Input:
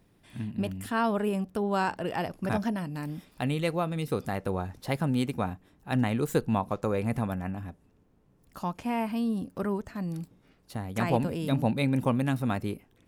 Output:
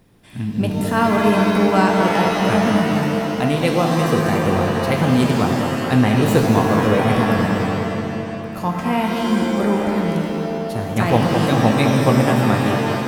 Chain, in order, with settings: bucket-brigade echo 210 ms, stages 2048, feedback 71%, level -6.5 dB; pitch-shifted reverb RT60 1.7 s, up +7 st, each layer -2 dB, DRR 4 dB; trim +8.5 dB

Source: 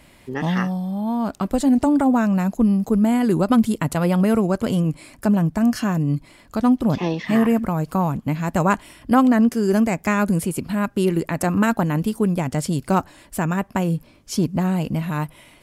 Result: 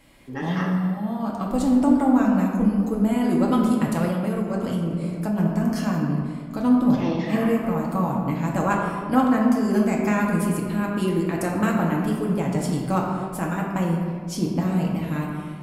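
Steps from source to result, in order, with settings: reverberation RT60 2.2 s, pre-delay 4 ms, DRR -3 dB; 4.08–5.38 s: compression, threshold -14 dBFS, peak gain reduction 7 dB; trim -7 dB

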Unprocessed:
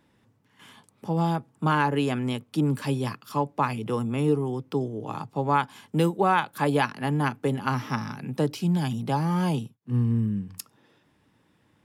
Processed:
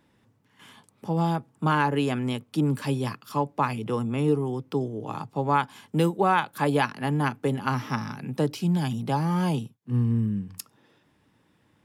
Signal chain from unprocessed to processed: 3.84–4.28 s: treble shelf 11 kHz -6.5 dB

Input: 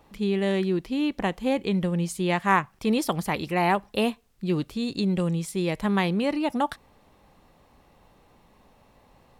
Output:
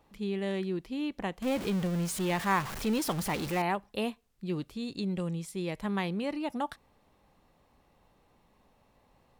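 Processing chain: 1.42–3.62 s: jump at every zero crossing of -25 dBFS; trim -8 dB

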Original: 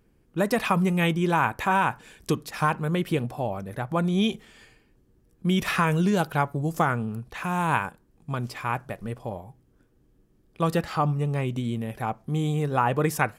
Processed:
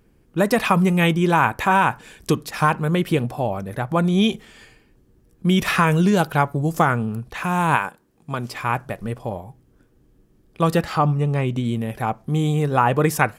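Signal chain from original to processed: 7.75–8.52 s: high-pass 350 Hz -> 170 Hz 6 dB/octave; 10.98–11.66 s: treble shelf 8.4 kHz -8 dB; trim +5.5 dB

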